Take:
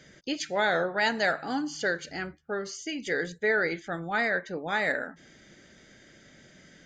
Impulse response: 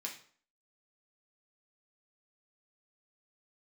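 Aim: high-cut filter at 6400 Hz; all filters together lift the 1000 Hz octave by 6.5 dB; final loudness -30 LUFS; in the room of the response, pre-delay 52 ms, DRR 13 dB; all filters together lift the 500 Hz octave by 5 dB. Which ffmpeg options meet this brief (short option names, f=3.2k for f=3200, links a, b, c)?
-filter_complex "[0:a]lowpass=6.4k,equalizer=f=500:t=o:g=4,equalizer=f=1k:t=o:g=7.5,asplit=2[a][b];[1:a]atrim=start_sample=2205,adelay=52[c];[b][c]afir=irnorm=-1:irlink=0,volume=-12.5dB[d];[a][d]amix=inputs=2:normalize=0,volume=-5dB"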